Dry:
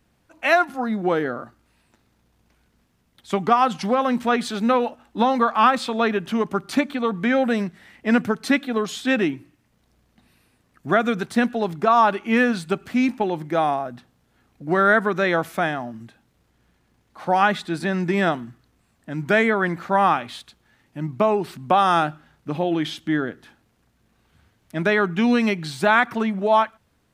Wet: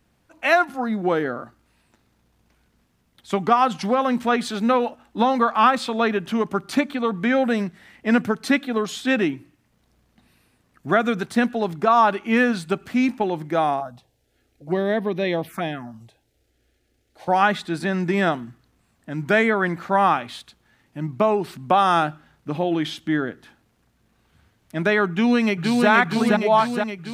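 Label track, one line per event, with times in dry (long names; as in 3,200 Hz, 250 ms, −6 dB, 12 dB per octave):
13.800000	17.280000	phaser swept by the level lowest notch 170 Hz, up to 1,400 Hz, full sweep at −18 dBFS
25.100000	25.890000	delay throw 470 ms, feedback 65%, level −2 dB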